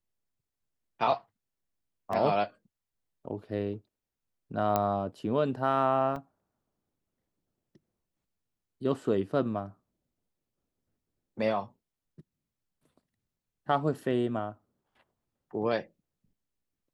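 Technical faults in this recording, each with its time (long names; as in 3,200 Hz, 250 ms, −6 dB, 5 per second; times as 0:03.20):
0:02.13: drop-out 3 ms
0:04.76: click −13 dBFS
0:06.16: drop-out 2.2 ms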